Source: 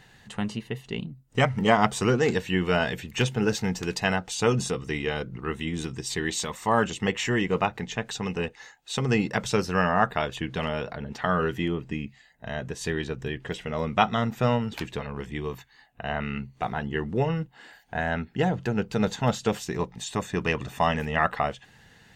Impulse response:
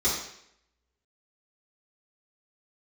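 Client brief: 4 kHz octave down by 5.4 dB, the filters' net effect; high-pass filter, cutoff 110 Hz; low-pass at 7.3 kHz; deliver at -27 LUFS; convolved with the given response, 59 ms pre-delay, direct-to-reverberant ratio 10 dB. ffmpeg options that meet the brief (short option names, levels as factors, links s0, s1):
-filter_complex "[0:a]highpass=110,lowpass=7300,equalizer=f=4000:t=o:g=-7.5,asplit=2[s0][s1];[1:a]atrim=start_sample=2205,adelay=59[s2];[s1][s2]afir=irnorm=-1:irlink=0,volume=0.0841[s3];[s0][s3]amix=inputs=2:normalize=0,volume=1.12"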